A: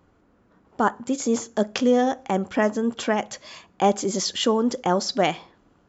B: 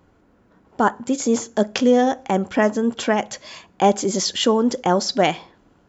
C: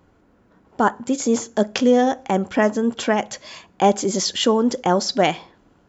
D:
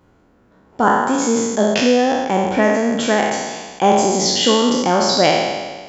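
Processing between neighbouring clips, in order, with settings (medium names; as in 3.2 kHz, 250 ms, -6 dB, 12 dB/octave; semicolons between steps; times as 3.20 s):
band-stop 1.2 kHz, Q 15; trim +3.5 dB
no audible change
spectral sustain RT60 1.45 s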